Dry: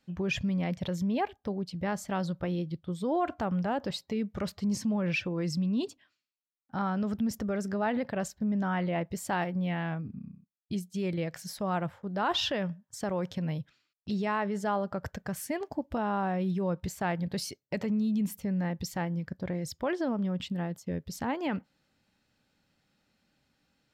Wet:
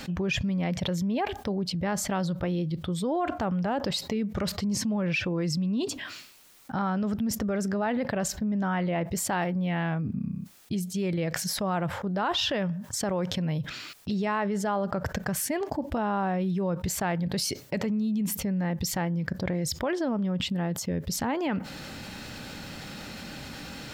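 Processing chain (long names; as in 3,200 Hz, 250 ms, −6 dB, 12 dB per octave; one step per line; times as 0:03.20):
envelope flattener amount 70%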